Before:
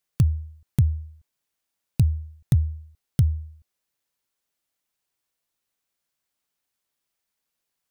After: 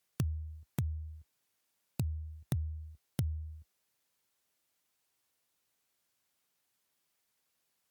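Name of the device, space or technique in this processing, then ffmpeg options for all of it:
podcast mastering chain: -af "highpass=frequency=61:width=0.5412,highpass=frequency=61:width=1.3066,acompressor=threshold=-33dB:ratio=3,alimiter=limit=-21dB:level=0:latency=1:release=454,volume=2.5dB" -ar 48000 -c:a libmp3lame -b:a 96k

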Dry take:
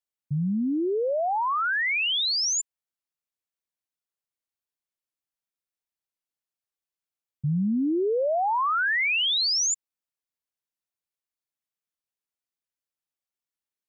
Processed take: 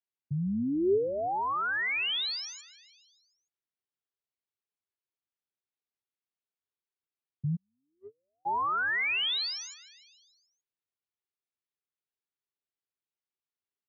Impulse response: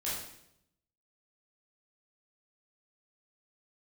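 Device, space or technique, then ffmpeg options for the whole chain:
frequency-shifting delay pedal into a guitar cabinet: -filter_complex "[0:a]asplit=7[link_01][link_02][link_03][link_04][link_05][link_06][link_07];[link_02]adelay=145,afreqshift=-74,volume=-19dB[link_08];[link_03]adelay=290,afreqshift=-148,volume=-23dB[link_09];[link_04]adelay=435,afreqshift=-222,volume=-27dB[link_10];[link_05]adelay=580,afreqshift=-296,volume=-31dB[link_11];[link_06]adelay=725,afreqshift=-370,volume=-35.1dB[link_12];[link_07]adelay=870,afreqshift=-444,volume=-39.1dB[link_13];[link_01][link_08][link_09][link_10][link_11][link_12][link_13]amix=inputs=7:normalize=0,highpass=91,equalizer=frequency=100:width_type=q:width=4:gain=9,equalizer=frequency=400:width_type=q:width=4:gain=8,equalizer=frequency=570:width_type=q:width=4:gain=-4,lowpass=frequency=4300:width=0.5412,lowpass=frequency=4300:width=1.3066,asplit=3[link_14][link_15][link_16];[link_14]afade=type=out:start_time=7.55:duration=0.02[link_17];[link_15]agate=range=-52dB:threshold=-14dB:ratio=16:detection=peak,afade=type=in:start_time=7.55:duration=0.02,afade=type=out:start_time=8.45:duration=0.02[link_18];[link_16]afade=type=in:start_time=8.45:duration=0.02[link_19];[link_17][link_18][link_19]amix=inputs=3:normalize=0,volume=-5dB"

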